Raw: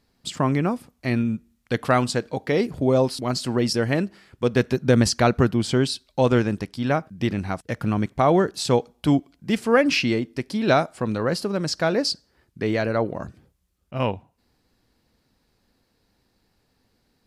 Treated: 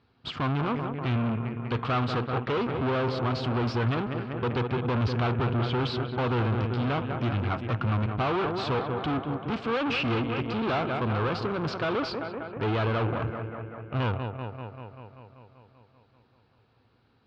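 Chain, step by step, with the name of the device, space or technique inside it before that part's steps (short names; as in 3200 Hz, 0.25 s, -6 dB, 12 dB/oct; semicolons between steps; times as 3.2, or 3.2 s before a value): 4.61–5.79 air absorption 140 m; analogue delay pedal into a guitar amplifier (analogue delay 0.194 s, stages 4096, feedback 70%, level -13.5 dB; tube stage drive 31 dB, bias 0.7; speaker cabinet 76–3500 Hz, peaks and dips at 110 Hz +6 dB, 190 Hz -8 dB, 300 Hz -3 dB, 580 Hz -5 dB, 1300 Hz +5 dB, 1900 Hz -7 dB); gain +7.5 dB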